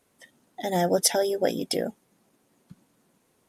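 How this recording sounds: noise floor -69 dBFS; spectral tilt -4.0 dB/octave

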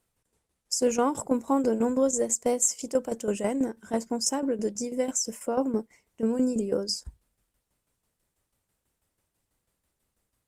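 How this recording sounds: tremolo saw down 6.1 Hz, depth 70%; Opus

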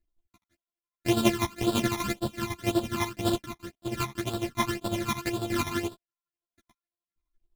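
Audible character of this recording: a buzz of ramps at a fixed pitch in blocks of 128 samples; phasing stages 12, 1.9 Hz, lowest notch 480–2100 Hz; chopped level 12 Hz, depth 60%, duty 40%; a shimmering, thickened sound

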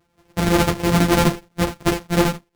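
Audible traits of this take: a buzz of ramps at a fixed pitch in blocks of 256 samples; chopped level 12 Hz, depth 60%, duty 75%; a shimmering, thickened sound

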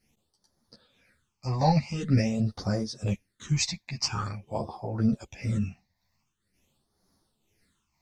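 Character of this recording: phasing stages 8, 0.46 Hz, lowest notch 390–2700 Hz; tremolo triangle 2 Hz, depth 65%; a shimmering, thickened sound

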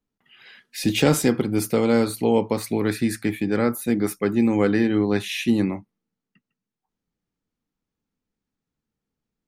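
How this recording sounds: noise floor -86 dBFS; spectral tilt -5.5 dB/octave

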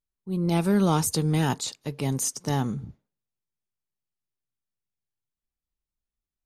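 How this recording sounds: noise floor -90 dBFS; spectral tilt -5.0 dB/octave

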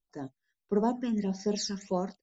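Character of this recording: phasing stages 12, 1.6 Hz, lowest notch 690–2900 Hz

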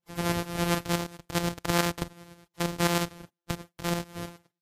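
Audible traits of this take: a buzz of ramps at a fixed pitch in blocks of 256 samples; tremolo saw up 9.4 Hz, depth 65%; Vorbis

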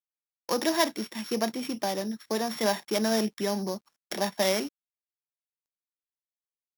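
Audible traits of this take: a buzz of ramps at a fixed pitch in blocks of 8 samples; tremolo saw down 0.76 Hz, depth 30%; a quantiser's noise floor 12-bit, dither none

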